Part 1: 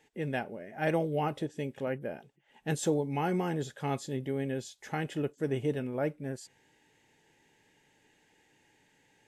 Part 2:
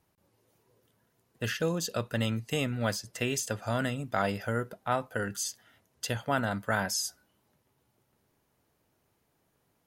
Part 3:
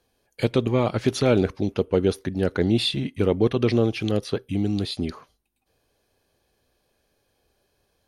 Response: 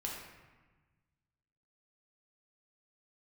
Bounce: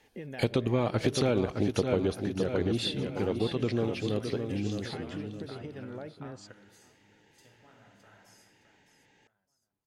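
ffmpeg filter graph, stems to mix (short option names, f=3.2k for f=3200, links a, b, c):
-filter_complex "[0:a]acompressor=threshold=-37dB:ratio=6,volume=2.5dB,asplit=2[a][b];[1:a]acompressor=threshold=-43dB:ratio=2.5,adelay=1350,volume=-6.5dB,asplit=3[c][d][e];[d]volume=-12.5dB[f];[e]volume=-23dB[g];[2:a]volume=-0.5dB,afade=t=out:st=1.92:d=0.36:silence=0.398107,afade=t=out:st=4.56:d=0.54:silence=0.354813,asplit=3[h][i][j];[i]volume=-21dB[k];[j]volume=-7.5dB[l];[b]apad=whole_len=494729[m];[c][m]sidechaingate=range=-33dB:threshold=-52dB:ratio=16:detection=peak[n];[a][n]amix=inputs=2:normalize=0,lowpass=f=6.4k:w=0.5412,lowpass=f=6.4k:w=1.3066,acompressor=threshold=-38dB:ratio=6,volume=0dB[o];[3:a]atrim=start_sample=2205[p];[f][k]amix=inputs=2:normalize=0[q];[q][p]afir=irnorm=-1:irlink=0[r];[g][l]amix=inputs=2:normalize=0,aecho=0:1:614|1228|1842|2456|3070:1|0.35|0.122|0.0429|0.015[s];[h][o][r][s]amix=inputs=4:normalize=0,acompressor=threshold=-23dB:ratio=5"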